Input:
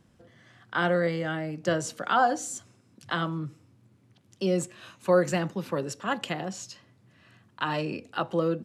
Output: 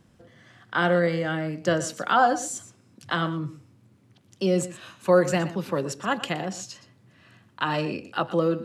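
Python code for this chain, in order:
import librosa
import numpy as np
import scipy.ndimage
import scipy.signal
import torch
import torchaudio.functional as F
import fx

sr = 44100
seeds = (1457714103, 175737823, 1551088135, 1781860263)

y = x + 10.0 ** (-15.0 / 20.0) * np.pad(x, (int(120 * sr / 1000.0), 0))[:len(x)]
y = F.gain(torch.from_numpy(y), 3.0).numpy()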